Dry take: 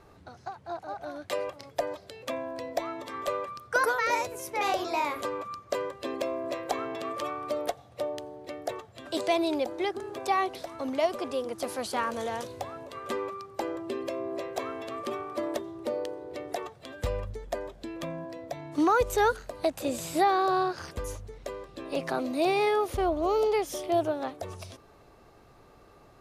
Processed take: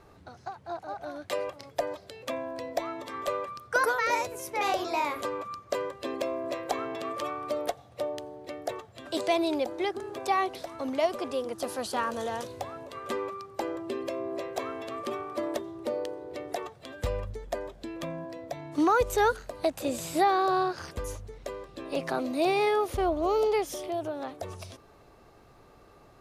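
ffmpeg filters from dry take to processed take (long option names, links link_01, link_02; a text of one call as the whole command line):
ffmpeg -i in.wav -filter_complex "[0:a]asettb=1/sr,asplit=3[link_01][link_02][link_03];[link_01]atrim=end=11.544[link_04];[link_02]atrim=start=11.54:end=12.4,asetpts=PTS-STARTPTS,afade=type=in:duration=0.004:curve=qsin,afade=type=out:start_time=0.856:duration=0.004:curve=qsin,bandreject=frequency=2200:width=7.3[link_05];[link_03]atrim=start=12.396[link_06];[link_04][link_05]acrossfade=duration=0.004:curve1=hsin:curve2=qsin[link_07];[link_07][link_06]acrossfade=duration=0.004:curve1=qsin:curve2=hsin,asettb=1/sr,asplit=3[link_08][link_09][link_10];[link_08]atrim=end=23.734[link_11];[link_09]atrim=start=23.73:end=24.4,asetpts=PTS-STARTPTS,afade=type=in:duration=0.004:curve=qsin,afade=type=out:start_time=0.666:duration=0.004:curve=qsin,acompressor=threshold=-33dB:ratio=2:attack=3.2:release=140:knee=1:detection=peak[link_12];[link_10]atrim=start=24.396[link_13];[link_11][link_12]acrossfade=duration=0.004:curve1=hsin:curve2=qsin[link_14];[link_14][link_13]acrossfade=duration=0.004:curve1=qsin:curve2=hsin" out.wav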